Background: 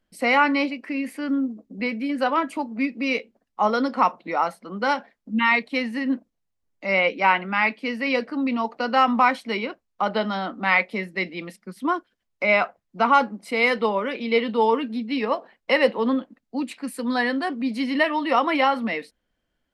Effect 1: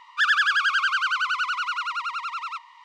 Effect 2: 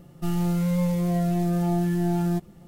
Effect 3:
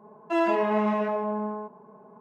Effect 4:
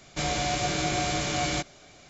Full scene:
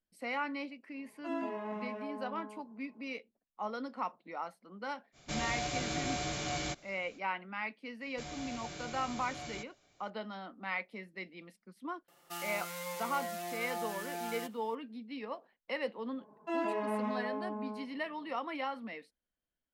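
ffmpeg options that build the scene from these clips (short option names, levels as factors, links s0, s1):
-filter_complex "[3:a]asplit=2[s0][s1];[4:a]asplit=2[s2][s3];[0:a]volume=0.133[s4];[2:a]highpass=920[s5];[s0]atrim=end=2.2,asetpts=PTS-STARTPTS,volume=0.168,afade=t=in:d=0.004:c=hsin,afade=t=out:st=2.196:d=0.004:c=hsin,adelay=940[s6];[s2]atrim=end=2.09,asetpts=PTS-STARTPTS,volume=0.376,afade=t=in:d=0.05,afade=t=out:st=2.04:d=0.05,adelay=5120[s7];[s3]atrim=end=2.09,asetpts=PTS-STARTPTS,volume=0.141,afade=t=in:d=0.004:c=hsin,afade=t=out:st=2.086:d=0.004:c=hsin,adelay=8010[s8];[s5]atrim=end=2.67,asetpts=PTS-STARTPTS,volume=0.891,afade=t=in:d=0.004:c=hsin,afade=t=out:st=2.666:d=0.004:c=hsin,adelay=12080[s9];[s1]atrim=end=2.2,asetpts=PTS-STARTPTS,volume=0.299,afade=t=in:d=0.004:c=hsin,afade=t=out:st=2.196:d=0.004:c=hsin,adelay=16170[s10];[s4][s6][s7][s8][s9][s10]amix=inputs=6:normalize=0"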